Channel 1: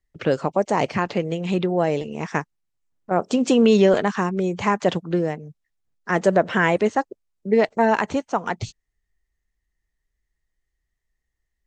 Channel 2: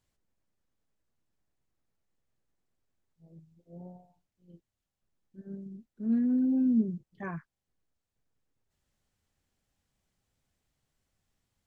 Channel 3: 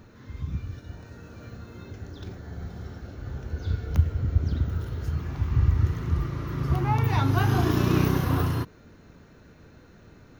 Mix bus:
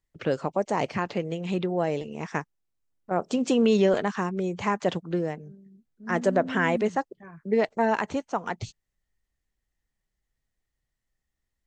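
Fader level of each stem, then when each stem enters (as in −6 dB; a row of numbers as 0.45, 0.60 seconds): −5.5 dB, −8.5 dB, muted; 0.00 s, 0.00 s, muted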